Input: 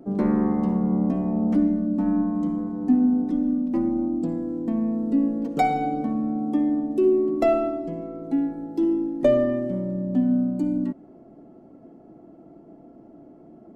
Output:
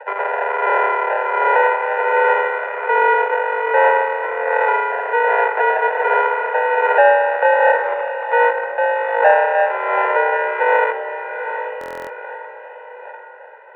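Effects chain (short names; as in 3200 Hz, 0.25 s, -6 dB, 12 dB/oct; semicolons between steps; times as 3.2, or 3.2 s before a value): AGC gain up to 4 dB; in parallel at -7 dB: Schmitt trigger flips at -23 dBFS; on the sum: phaser 1.3 Hz, delay 1.7 ms, feedback 61%; sample-rate reducer 1000 Hz, jitter 0%; overloaded stage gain 11.5 dB; on a send: diffused feedback echo 0.802 s, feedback 42%, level -9 dB; on the sum: mistuned SSB +200 Hz 350–2000 Hz; stuck buffer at 11.79, samples 1024, times 12; gain +5.5 dB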